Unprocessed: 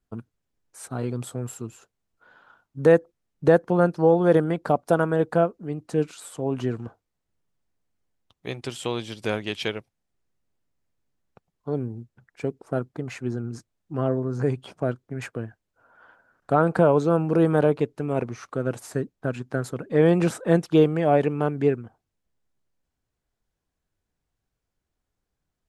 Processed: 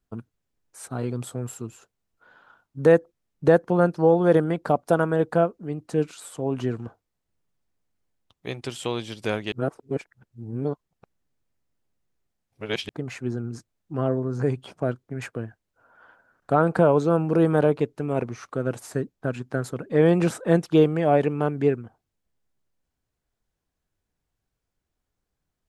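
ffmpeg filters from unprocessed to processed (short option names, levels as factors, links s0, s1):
-filter_complex "[0:a]asplit=3[s0][s1][s2];[s0]atrim=end=9.522[s3];[s1]atrim=start=9.518:end=12.892,asetpts=PTS-STARTPTS,areverse[s4];[s2]atrim=start=12.888[s5];[s3][s4]acrossfade=d=0.004:c1=hsin:c2=hsin[s6];[s6][s5]acrossfade=d=0.004:c1=hsin:c2=hsin"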